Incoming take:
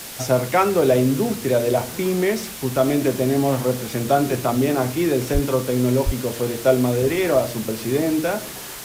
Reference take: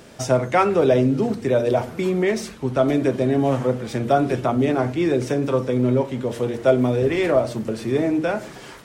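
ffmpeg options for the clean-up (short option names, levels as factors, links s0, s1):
-filter_complex "[0:a]asplit=3[s0][s1][s2];[s0]afade=t=out:st=5.33:d=0.02[s3];[s1]highpass=f=140:w=0.5412,highpass=f=140:w=1.3066,afade=t=in:st=5.33:d=0.02,afade=t=out:st=5.45:d=0.02[s4];[s2]afade=t=in:st=5.45:d=0.02[s5];[s3][s4][s5]amix=inputs=3:normalize=0,asplit=3[s6][s7][s8];[s6]afade=t=out:st=6.05:d=0.02[s9];[s7]highpass=f=140:w=0.5412,highpass=f=140:w=1.3066,afade=t=in:st=6.05:d=0.02,afade=t=out:st=6.17:d=0.02[s10];[s8]afade=t=in:st=6.17:d=0.02[s11];[s9][s10][s11]amix=inputs=3:normalize=0,afwtdn=0.02"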